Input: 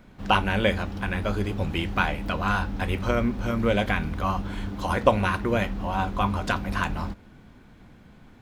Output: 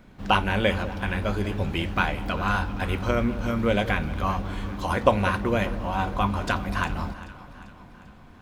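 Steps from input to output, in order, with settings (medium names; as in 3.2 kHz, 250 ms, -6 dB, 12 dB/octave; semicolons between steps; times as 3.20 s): echo whose repeats swap between lows and highs 197 ms, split 1 kHz, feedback 73%, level -14 dB; on a send at -20.5 dB: reverberation RT60 5.7 s, pre-delay 54 ms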